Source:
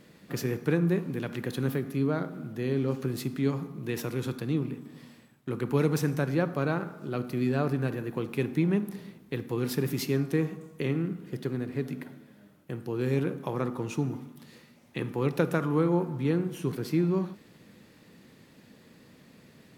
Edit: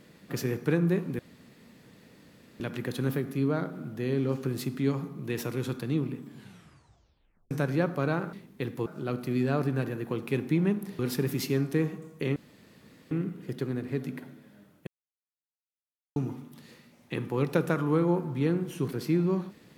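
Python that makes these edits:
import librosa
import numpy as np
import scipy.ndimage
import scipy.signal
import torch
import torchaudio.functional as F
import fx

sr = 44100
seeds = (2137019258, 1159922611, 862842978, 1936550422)

y = fx.edit(x, sr, fx.insert_room_tone(at_s=1.19, length_s=1.41),
    fx.tape_stop(start_s=4.84, length_s=1.26),
    fx.move(start_s=9.05, length_s=0.53, to_s=6.92),
    fx.insert_room_tone(at_s=10.95, length_s=0.75),
    fx.silence(start_s=12.71, length_s=1.29), tone=tone)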